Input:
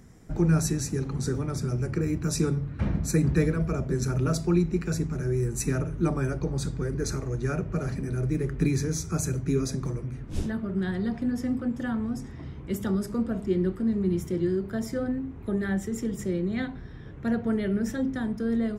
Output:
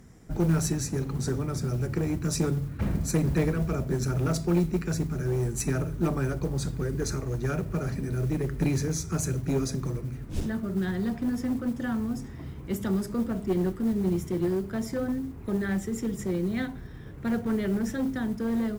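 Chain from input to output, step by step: one-sided clip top -24 dBFS; modulation noise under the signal 29 dB

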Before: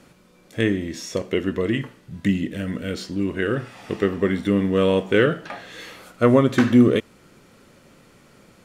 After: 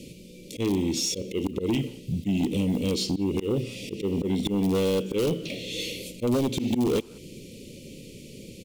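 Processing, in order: block floating point 7-bit; auto swell 0.206 s; dynamic EQ 100 Hz, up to -4 dB, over -35 dBFS, Q 1.1; in parallel at -9 dB: wrapped overs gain 17 dB; on the sum: compressor 2.5:1, threshold -28 dBFS, peak gain reduction 10.5 dB; inverse Chebyshev band-stop 750–1700 Hz, stop band 40 dB; sine folder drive 7 dB, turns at -15.5 dBFS; speakerphone echo 0.18 s, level -20 dB; gain -4 dB

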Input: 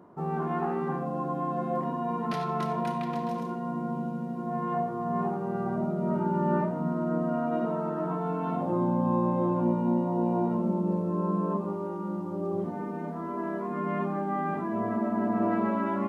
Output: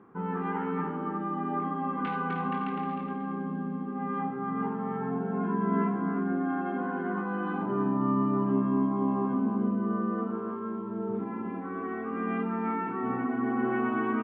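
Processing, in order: bell 540 Hz -13 dB 0.55 oct; varispeed +13%; steep low-pass 3100 Hz 36 dB/oct; outdoor echo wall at 53 m, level -7 dB

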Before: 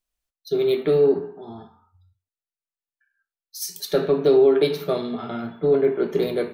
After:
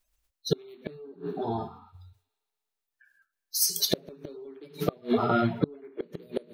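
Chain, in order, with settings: bin magnitudes rounded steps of 30 dB; in parallel at -2 dB: compressor 10:1, threshold -32 dBFS, peak gain reduction 19 dB; on the sum: thin delay 0.117 s, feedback 68%, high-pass 2500 Hz, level -22.5 dB; flipped gate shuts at -14 dBFS, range -32 dB; gain +3.5 dB

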